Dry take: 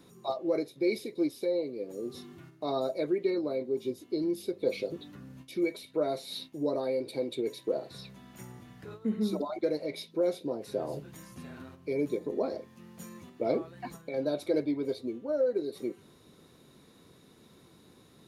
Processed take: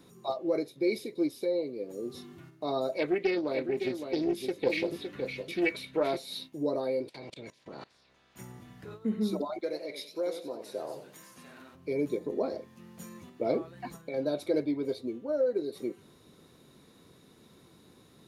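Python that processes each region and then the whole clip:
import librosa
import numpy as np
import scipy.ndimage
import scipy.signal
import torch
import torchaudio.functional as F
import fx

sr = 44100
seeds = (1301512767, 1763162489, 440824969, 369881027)

y = fx.chain(x, sr, fx.peak_eq(hz=2200.0, db=10.0, octaves=1.5),
    fx.echo_single(ms=561, db=-7.0),
    fx.doppler_dist(depth_ms=0.19), at=(2.92, 6.17))
y = fx.spec_clip(y, sr, under_db=24, at=(7.08, 8.35), fade=0.02)
y = fx.lowpass(y, sr, hz=5500.0, slope=12, at=(7.08, 8.35), fade=0.02)
y = fx.level_steps(y, sr, step_db=22, at=(7.08, 8.35), fade=0.02)
y = fx.chain(y, sr, fx.highpass(hz=660.0, slope=6),
    fx.echo_warbled(ms=92, feedback_pct=32, rate_hz=2.8, cents=125, wet_db=-9.5), at=(9.6, 11.75))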